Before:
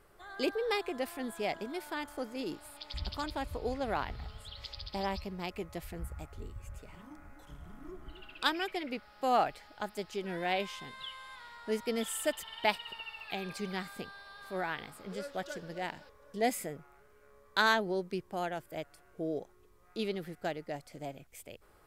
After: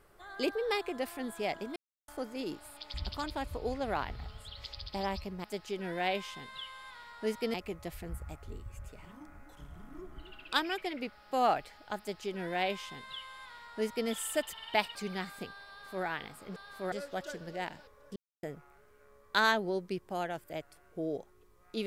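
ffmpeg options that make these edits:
-filter_complex "[0:a]asplit=10[a][b][c][d][e][f][g][h][i][j];[a]atrim=end=1.76,asetpts=PTS-STARTPTS,afade=t=out:st=1.756:d=0.004:c=hsin[k];[b]atrim=start=1.76:end=2.08,asetpts=PTS-STARTPTS,volume=0[l];[c]atrim=start=2.08:end=5.442,asetpts=PTS-STARTPTS,afade=t=in:d=0.004:c=hsin[m];[d]atrim=start=9.888:end=11.992[n];[e]atrim=start=5.438:end=12.852[o];[f]atrim=start=13.528:end=15.142[p];[g]atrim=start=14.268:end=14.632[q];[h]atrim=start=15.138:end=16.38,asetpts=PTS-STARTPTS,afade=t=out:st=1.238:d=0.004:c=hsin[r];[i]atrim=start=16.38:end=16.65,asetpts=PTS-STARTPTS,volume=0[s];[j]atrim=start=16.65,asetpts=PTS-STARTPTS,afade=t=in:d=0.004:c=hsin[t];[k][l][m]concat=n=3:v=0:a=1[u];[u][n]acrossfade=d=0.004:c1=hsin:c2=hsin[v];[v][o]acrossfade=d=0.004:c1=hsin:c2=hsin[w];[w][p]acrossfade=d=0.004:c1=hsin:c2=hsin[x];[x][q]acrossfade=d=0.004:c1=hsin:c2=hsin[y];[r][s][t]concat=n=3:v=0:a=1[z];[y][z]acrossfade=d=0.004:c1=hsin:c2=hsin"

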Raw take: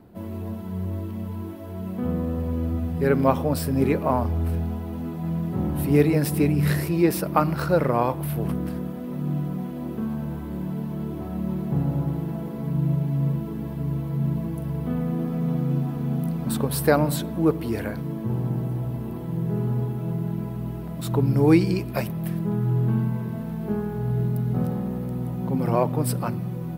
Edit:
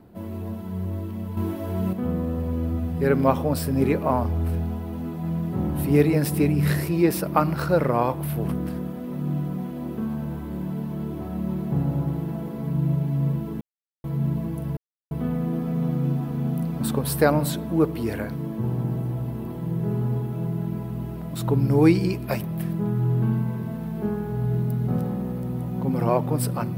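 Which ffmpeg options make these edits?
-filter_complex "[0:a]asplit=6[a][b][c][d][e][f];[a]atrim=end=1.372[g];[b]atrim=start=1.368:end=1.932,asetpts=PTS-STARTPTS,volume=7dB[h];[c]atrim=start=1.928:end=13.61,asetpts=PTS-STARTPTS,afade=t=out:st=11.678:d=0.004:c=hsin[i];[d]atrim=start=13.61:end=14.04,asetpts=PTS-STARTPTS,volume=0[j];[e]atrim=start=14.04:end=14.77,asetpts=PTS-STARTPTS,afade=t=in:d=0.004:c=hsin,afade=t=out:st=0.726:d=0.004:c=hsin,apad=pad_dur=0.34[k];[f]atrim=start=14.77,asetpts=PTS-STARTPTS,afade=t=in:d=0.004:c=hsin[l];[g][h]acrossfade=d=0.004:c1=hsin:c2=hsin[m];[i][j][k][l]concat=n=4:v=0:a=1[n];[m][n]acrossfade=d=0.004:c1=hsin:c2=hsin"

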